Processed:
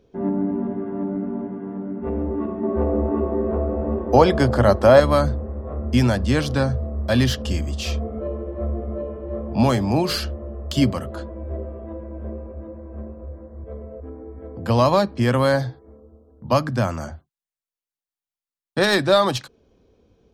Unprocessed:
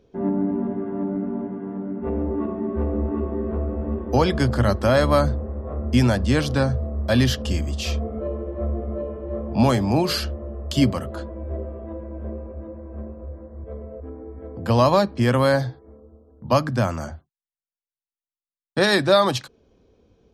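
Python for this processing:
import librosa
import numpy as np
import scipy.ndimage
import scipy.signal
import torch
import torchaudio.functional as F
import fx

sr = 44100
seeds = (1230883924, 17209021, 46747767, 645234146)

y = fx.tracing_dist(x, sr, depth_ms=0.022)
y = fx.peak_eq(y, sr, hz=650.0, db=8.0, octaves=1.8, at=(2.63, 5.0))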